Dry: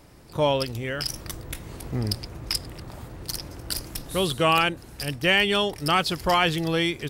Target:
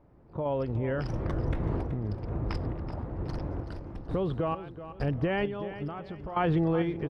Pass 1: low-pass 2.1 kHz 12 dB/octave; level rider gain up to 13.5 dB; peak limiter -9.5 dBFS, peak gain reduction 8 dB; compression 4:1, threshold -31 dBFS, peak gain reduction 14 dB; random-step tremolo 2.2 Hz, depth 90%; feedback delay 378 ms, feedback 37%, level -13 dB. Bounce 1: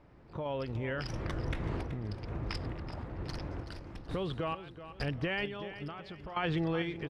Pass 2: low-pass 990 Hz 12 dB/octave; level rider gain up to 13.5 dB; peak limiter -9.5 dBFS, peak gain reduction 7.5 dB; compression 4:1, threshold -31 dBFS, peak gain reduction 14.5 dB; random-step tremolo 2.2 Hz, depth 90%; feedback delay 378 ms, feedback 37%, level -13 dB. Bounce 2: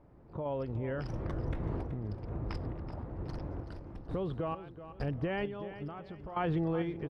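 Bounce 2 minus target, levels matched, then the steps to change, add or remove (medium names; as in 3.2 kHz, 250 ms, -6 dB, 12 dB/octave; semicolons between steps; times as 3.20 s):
compression: peak gain reduction +5.5 dB
change: compression 4:1, threshold -23.5 dBFS, peak gain reduction 8.5 dB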